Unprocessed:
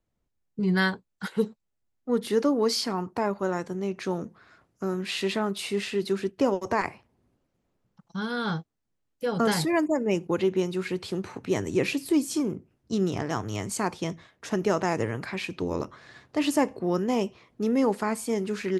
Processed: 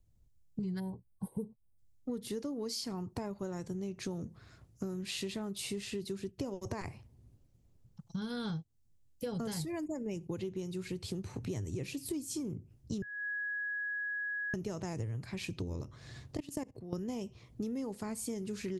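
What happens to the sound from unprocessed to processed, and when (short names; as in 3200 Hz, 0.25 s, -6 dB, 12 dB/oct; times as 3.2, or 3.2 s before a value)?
0.79–1.78 spectral gain 1100–8100 Hz -28 dB
13.02–14.54 bleep 1670 Hz -24 dBFS
16.37–16.93 level quantiser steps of 22 dB
whole clip: EQ curve 120 Hz 0 dB, 190 Hz -11 dB, 1400 Hz -22 dB, 6900 Hz -9 dB; compressor 10:1, threshold -48 dBFS; gain +13 dB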